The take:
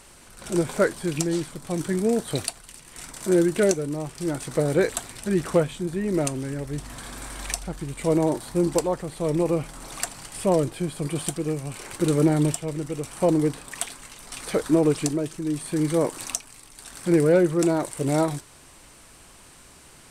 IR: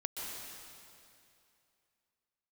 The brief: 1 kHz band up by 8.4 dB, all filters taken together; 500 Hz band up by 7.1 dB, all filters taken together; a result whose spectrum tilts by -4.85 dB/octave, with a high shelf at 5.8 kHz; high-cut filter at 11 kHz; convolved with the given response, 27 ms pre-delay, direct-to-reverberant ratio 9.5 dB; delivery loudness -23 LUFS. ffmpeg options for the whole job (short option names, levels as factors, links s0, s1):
-filter_complex "[0:a]lowpass=11000,equalizer=f=500:t=o:g=6.5,equalizer=f=1000:t=o:g=8.5,highshelf=f=5800:g=6,asplit=2[s0][s1];[1:a]atrim=start_sample=2205,adelay=27[s2];[s1][s2]afir=irnorm=-1:irlink=0,volume=0.266[s3];[s0][s3]amix=inputs=2:normalize=0,volume=0.668"